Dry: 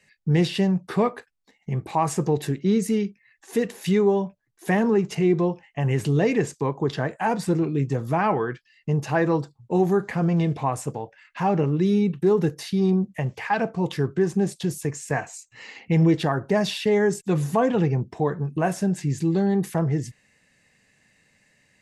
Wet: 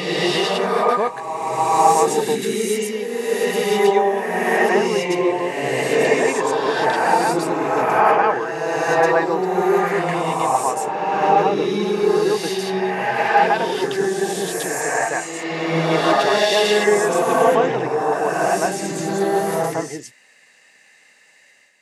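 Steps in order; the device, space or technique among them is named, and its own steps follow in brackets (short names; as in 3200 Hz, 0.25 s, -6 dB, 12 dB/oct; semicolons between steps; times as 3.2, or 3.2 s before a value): ghost voice (reverse; reverb RT60 2.3 s, pre-delay 0.101 s, DRR -6.5 dB; reverse; HPF 490 Hz 12 dB/oct); gain +4 dB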